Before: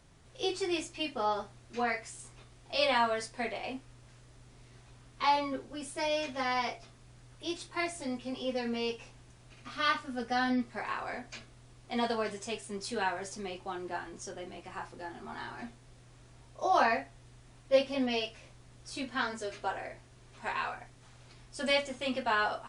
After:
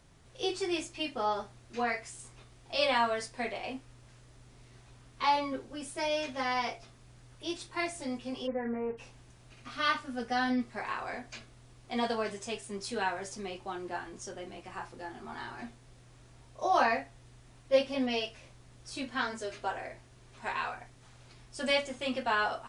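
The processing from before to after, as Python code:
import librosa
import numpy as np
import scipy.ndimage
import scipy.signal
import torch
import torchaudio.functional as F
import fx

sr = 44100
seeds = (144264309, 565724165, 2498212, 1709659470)

y = fx.steep_lowpass(x, sr, hz=2100.0, slope=72, at=(8.46, 8.97), fade=0.02)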